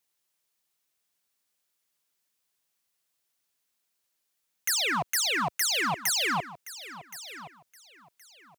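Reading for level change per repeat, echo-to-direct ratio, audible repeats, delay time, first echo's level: −13.0 dB, −15.5 dB, 2, 1,071 ms, −15.5 dB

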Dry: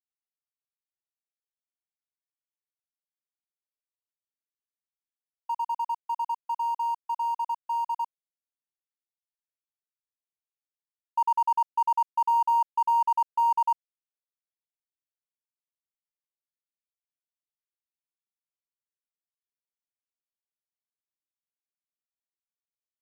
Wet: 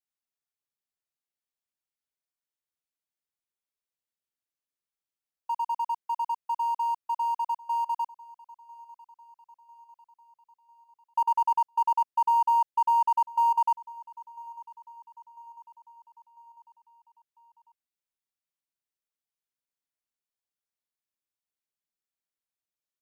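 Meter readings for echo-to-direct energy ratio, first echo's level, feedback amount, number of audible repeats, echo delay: −20.5 dB, −22.0 dB, 55%, 3, 998 ms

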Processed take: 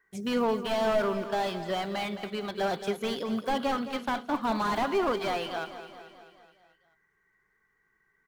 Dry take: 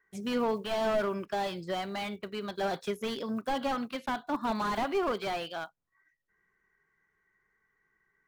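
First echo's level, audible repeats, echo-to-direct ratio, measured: −12.0 dB, 5, −10.0 dB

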